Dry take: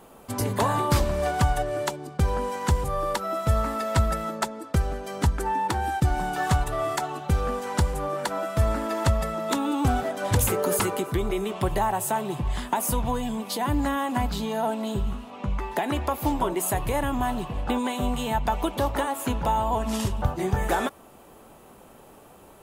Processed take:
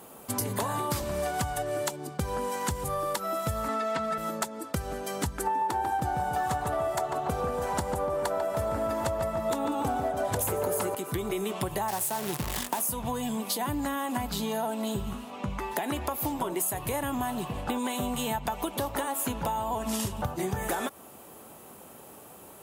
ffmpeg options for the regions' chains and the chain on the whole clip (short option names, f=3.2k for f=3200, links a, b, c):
-filter_complex "[0:a]asettb=1/sr,asplit=3[a][b][c];[a]atrim=end=3.684[d];[b]atrim=start=3.68:end=4.18,asetpts=PTS-STARTPTS,afade=t=in:d=0.004:c=qsin,afade=t=out:st=0.496:d=0.004:c=qsin,acrossover=split=4000[e][f];[f]acompressor=threshold=-45dB:ratio=4:attack=1:release=60[g];[e][g]amix=inputs=2:normalize=0,highpass=200,lowpass=6.9k,aecho=1:1:4.5:0.89,atrim=end_sample=22050[h];[c]atrim=start=4.176[i];[d][h]acrossfade=d=0.004:c1=hsin:c2=qsin[j];[j][i]acrossfade=d=0.004:c1=qsin:c2=hsin,asettb=1/sr,asplit=3[k][l][m];[k]atrim=end=5.474[n];[l]atrim=start=5.47:end=10.95,asetpts=PTS-STARTPTS,afade=t=in:d=0.004:c=qsin,afade=t=out:st=5.476:d=0.004:c=qsin,equalizer=f=630:t=o:w=2.1:g=9.5,asplit=2[o][p];[p]adelay=145,lowpass=f=1.8k:p=1,volume=-4dB,asplit=2[q][r];[r]adelay=145,lowpass=f=1.8k:p=1,volume=0.55,asplit=2[s][t];[t]adelay=145,lowpass=f=1.8k:p=1,volume=0.55,asplit=2[u][v];[v]adelay=145,lowpass=f=1.8k:p=1,volume=0.55,asplit=2[w][x];[x]adelay=145,lowpass=f=1.8k:p=1,volume=0.55,asplit=2[y][z];[z]adelay=145,lowpass=f=1.8k:p=1,volume=0.55,asplit=2[aa][ab];[ab]adelay=145,lowpass=f=1.8k:p=1,volume=0.55[ac];[o][q][s][u][w][y][aa][ac]amix=inputs=8:normalize=0,atrim=end_sample=241668[ad];[m]atrim=start=10.946[ae];[n][ad]acrossfade=d=0.004:c1=hsin:c2=qsin[af];[af][ae]acrossfade=d=0.004:c1=qsin:c2=hsin,asettb=1/sr,asplit=3[ag][ah][ai];[ag]atrim=end=11.884[aj];[ah]atrim=start=11.88:end=12.82,asetpts=PTS-STARTPTS,afade=t=in:d=0.004:c=qsin,afade=t=out:st=0.936:d=0.004:c=qsin,bandreject=f=1.4k:w=12,acrusher=bits=6:dc=4:mix=0:aa=0.000001[ak];[ai]atrim=start=12.816[al];[aj][ak]acrossfade=d=0.004:c1=hsin:c2=qsin[am];[am][al]acrossfade=d=0.004:c1=qsin:c2=hsin,highpass=84,equalizer=f=14k:t=o:w=1.5:g=9.5,acompressor=threshold=-27dB:ratio=6"